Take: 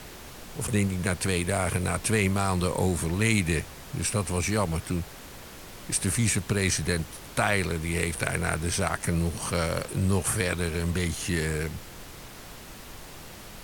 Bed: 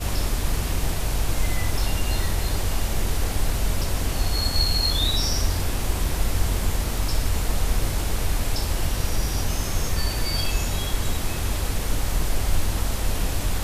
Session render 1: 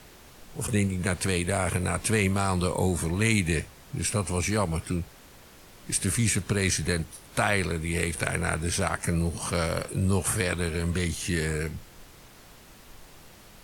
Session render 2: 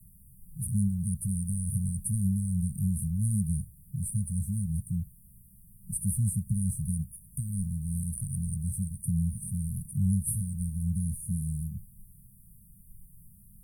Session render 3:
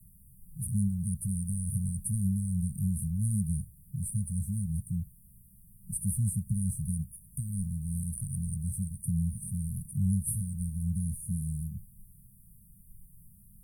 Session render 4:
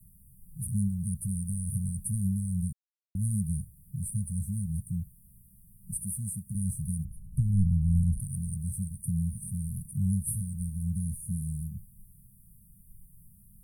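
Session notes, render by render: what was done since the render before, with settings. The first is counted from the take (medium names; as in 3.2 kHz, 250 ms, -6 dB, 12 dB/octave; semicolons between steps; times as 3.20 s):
noise print and reduce 7 dB
Chebyshev band-stop 200–9300 Hz, order 5
trim -1.5 dB
2.73–3.15 s: mute; 6.03–6.55 s: bass shelf 160 Hz -11.5 dB; 7.05–8.20 s: tilt EQ -3 dB/octave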